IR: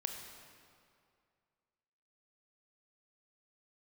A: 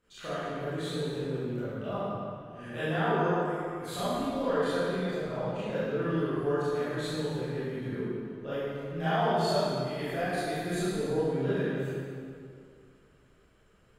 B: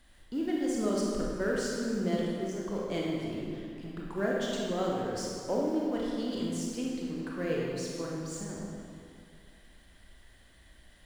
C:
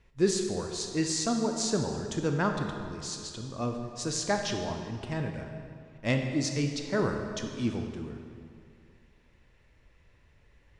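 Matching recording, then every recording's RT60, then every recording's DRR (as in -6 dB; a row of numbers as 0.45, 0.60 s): C; 2.3, 2.3, 2.3 s; -13.5, -4.0, 4.0 dB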